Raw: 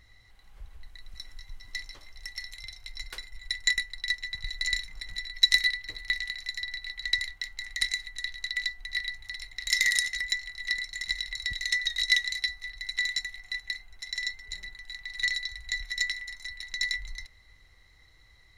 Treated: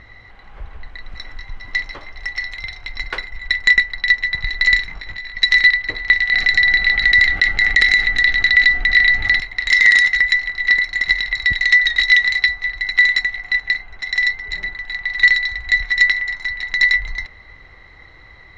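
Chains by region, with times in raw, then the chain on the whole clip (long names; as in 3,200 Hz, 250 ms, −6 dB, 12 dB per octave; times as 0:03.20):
0:04.86–0:05.37: low-pass filter 8,500 Hz 24 dB per octave + downward compressor, threshold −40 dBFS + double-tracking delay 20 ms −5 dB
0:06.32–0:09.40: Butterworth band-reject 1,000 Hz, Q 4.1 + parametric band 230 Hz +4.5 dB 1.6 octaves + envelope flattener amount 50%
whole clip: low-pass filter 2,000 Hz 12 dB per octave; low-shelf EQ 140 Hz −9.5 dB; boost into a limiter +22 dB; level −1 dB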